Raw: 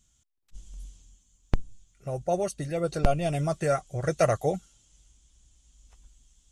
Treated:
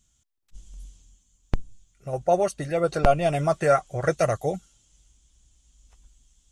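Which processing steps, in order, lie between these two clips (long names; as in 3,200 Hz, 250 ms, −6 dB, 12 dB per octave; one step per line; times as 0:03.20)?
0:02.13–0:04.16: parametric band 1,100 Hz +8.5 dB 2.8 octaves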